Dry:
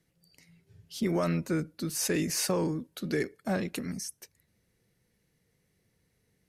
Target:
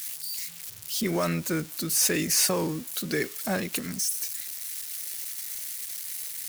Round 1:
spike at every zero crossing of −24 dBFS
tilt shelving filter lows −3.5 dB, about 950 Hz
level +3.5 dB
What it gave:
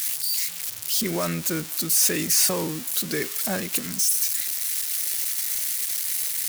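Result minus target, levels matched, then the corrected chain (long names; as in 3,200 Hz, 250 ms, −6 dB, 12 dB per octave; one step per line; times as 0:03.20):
spike at every zero crossing: distortion +9 dB
spike at every zero crossing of −33 dBFS
tilt shelving filter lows −3.5 dB, about 950 Hz
level +3.5 dB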